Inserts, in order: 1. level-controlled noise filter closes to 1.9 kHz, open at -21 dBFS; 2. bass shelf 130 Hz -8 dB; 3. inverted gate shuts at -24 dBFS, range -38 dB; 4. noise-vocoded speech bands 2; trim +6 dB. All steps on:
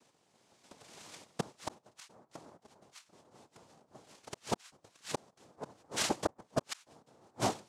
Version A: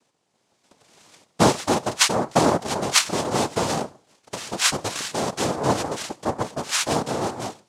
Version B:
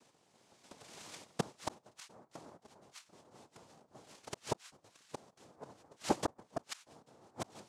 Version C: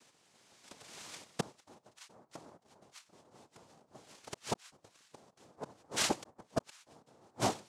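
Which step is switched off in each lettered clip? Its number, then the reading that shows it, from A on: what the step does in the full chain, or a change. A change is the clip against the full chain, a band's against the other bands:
3, momentary loudness spread change -13 LU; 2, 4 kHz band -3.5 dB; 1, 4 kHz band +1.5 dB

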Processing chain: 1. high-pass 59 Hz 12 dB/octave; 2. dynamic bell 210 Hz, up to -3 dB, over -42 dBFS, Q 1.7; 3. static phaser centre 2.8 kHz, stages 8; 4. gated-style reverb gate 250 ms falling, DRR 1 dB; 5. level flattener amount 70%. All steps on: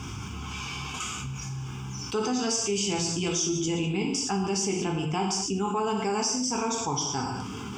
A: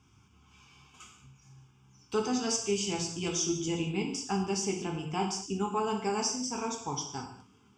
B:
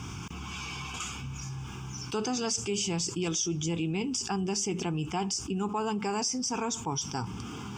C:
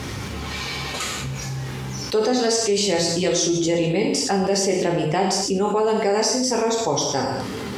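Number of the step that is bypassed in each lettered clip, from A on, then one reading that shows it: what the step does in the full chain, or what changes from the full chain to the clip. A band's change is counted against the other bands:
5, crest factor change +2.5 dB; 4, loudness change -3.5 LU; 3, 500 Hz band +5.5 dB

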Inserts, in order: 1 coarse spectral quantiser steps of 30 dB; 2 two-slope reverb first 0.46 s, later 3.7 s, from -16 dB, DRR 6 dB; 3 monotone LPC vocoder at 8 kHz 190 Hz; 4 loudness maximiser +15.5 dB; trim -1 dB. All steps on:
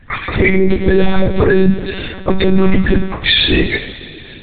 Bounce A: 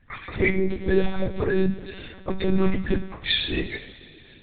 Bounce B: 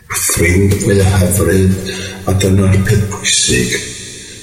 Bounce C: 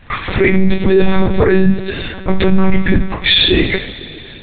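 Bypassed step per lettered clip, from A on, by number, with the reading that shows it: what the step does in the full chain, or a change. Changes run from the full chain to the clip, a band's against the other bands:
4, crest factor change +6.0 dB; 3, 125 Hz band +7.0 dB; 1, momentary loudness spread change +2 LU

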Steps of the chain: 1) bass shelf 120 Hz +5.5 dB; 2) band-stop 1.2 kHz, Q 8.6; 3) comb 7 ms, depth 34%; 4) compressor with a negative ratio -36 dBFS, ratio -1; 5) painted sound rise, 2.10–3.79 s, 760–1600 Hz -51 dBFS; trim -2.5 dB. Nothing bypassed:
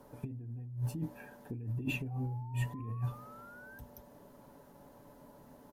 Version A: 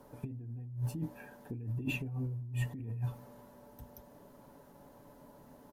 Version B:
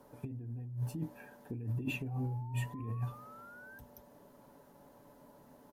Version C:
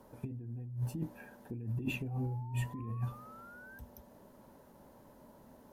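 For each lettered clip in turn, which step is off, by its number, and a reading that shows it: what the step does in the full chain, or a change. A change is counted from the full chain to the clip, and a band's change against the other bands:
5, 1 kHz band -5.5 dB; 1, momentary loudness spread change +2 LU; 3, momentary loudness spread change +1 LU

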